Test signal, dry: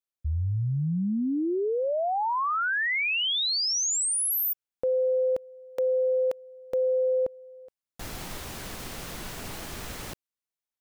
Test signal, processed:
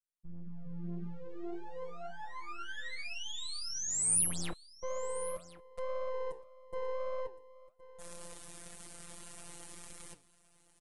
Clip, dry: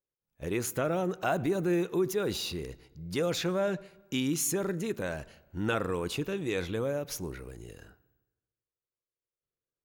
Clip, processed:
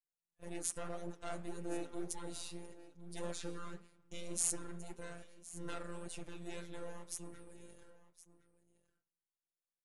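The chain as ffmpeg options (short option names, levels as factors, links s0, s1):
-filter_complex "[0:a]highpass=49,adynamicequalizer=threshold=0.01:dfrequency=820:dqfactor=1:tfrequency=820:tqfactor=1:attack=5:release=100:ratio=0.375:range=2:mode=cutabove:tftype=bell,acrossover=split=7900[s0][s1];[s0]aeval=exprs='max(val(0),0)':c=same[s2];[s1]crystalizer=i=2:c=0[s3];[s2][s3]amix=inputs=2:normalize=0,afftfilt=real='hypot(re,im)*cos(PI*b)':imag='0':win_size=1024:overlap=0.75,flanger=delay=5.7:depth=8.7:regen=-77:speed=1.8:shape=triangular,aeval=exprs='0.316*(cos(1*acos(clip(val(0)/0.316,-1,1)))-cos(1*PI/2))+0.00891*(cos(6*acos(clip(val(0)/0.316,-1,1)))-cos(6*PI/2))+0.0141*(cos(7*acos(clip(val(0)/0.316,-1,1)))-cos(7*PI/2))+0.0224*(cos(8*acos(clip(val(0)/0.316,-1,1)))-cos(8*PI/2))':c=same,aecho=1:1:1066:0.133,aresample=22050,aresample=44100,volume=1.26"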